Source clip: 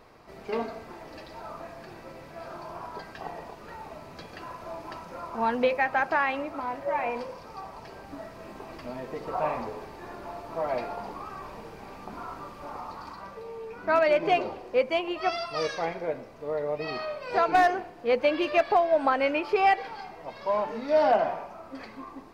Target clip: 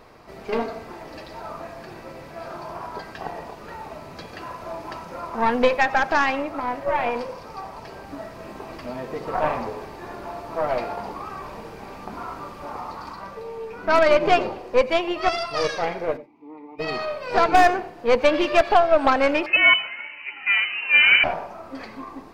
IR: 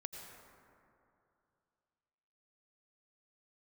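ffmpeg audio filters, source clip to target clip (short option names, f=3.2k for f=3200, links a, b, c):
-filter_complex "[0:a]aeval=exprs='0.237*(cos(1*acos(clip(val(0)/0.237,-1,1)))-cos(1*PI/2))+0.0376*(cos(4*acos(clip(val(0)/0.237,-1,1)))-cos(4*PI/2))':c=same,asplit=3[a][b][c];[a]afade=t=out:st=16.16:d=0.02[d];[b]asplit=3[e][f][g];[e]bandpass=f=300:t=q:w=8,volume=0dB[h];[f]bandpass=f=870:t=q:w=8,volume=-6dB[i];[g]bandpass=f=2.24k:t=q:w=8,volume=-9dB[j];[h][i][j]amix=inputs=3:normalize=0,afade=t=in:st=16.16:d=0.02,afade=t=out:st=16.78:d=0.02[k];[c]afade=t=in:st=16.78:d=0.02[l];[d][k][l]amix=inputs=3:normalize=0,asettb=1/sr,asplit=3[m][n][o];[m]atrim=end=19.464[p];[n]atrim=start=19.46:end=21.24,asetpts=PTS-STARTPTS,afade=t=in:d=0.004:c=qsin,afade=t=out:st=1.776:d=0.004:c=qsin,lowpass=f=2.6k:t=q:w=0.5098,lowpass=f=2.6k:t=q:w=0.6013,lowpass=f=2.6k:t=q:w=0.9,lowpass=f=2.6k:t=q:w=2.563,afreqshift=-3000[q];[o]atrim=start=21.236[r];[p][q]acrossfade=d=0.004:c1=hsin:c2=qsin[s];[s][r]acrossfade=d=0.004:c1=qsin:c2=hsin,asplit=2[t][u];[1:a]atrim=start_sample=2205,atrim=end_sample=4410[v];[u][v]afir=irnorm=-1:irlink=0,volume=3dB[w];[t][w]amix=inputs=2:normalize=0"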